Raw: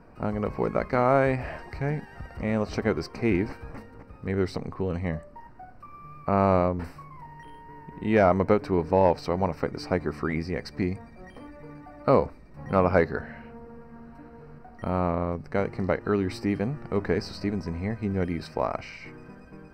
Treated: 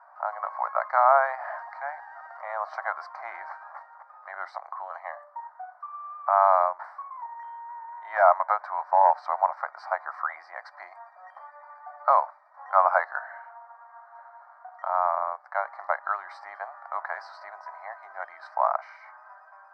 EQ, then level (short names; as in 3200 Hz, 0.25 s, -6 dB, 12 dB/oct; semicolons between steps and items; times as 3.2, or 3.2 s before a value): steep high-pass 620 Hz 48 dB/oct; LPF 1600 Hz 12 dB/oct; fixed phaser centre 1100 Hz, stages 4; +9.0 dB